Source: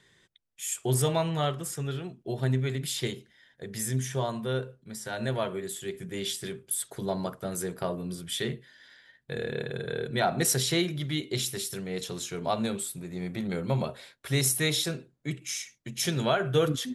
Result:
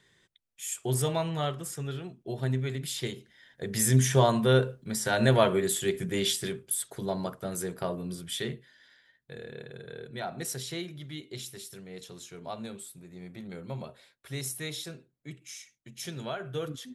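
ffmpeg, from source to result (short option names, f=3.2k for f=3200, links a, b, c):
-af "volume=8dB,afade=t=in:st=3.13:d=0.93:silence=0.298538,afade=t=out:st=5.73:d=1.1:silence=0.354813,afade=t=out:st=8.16:d=1.25:silence=0.354813"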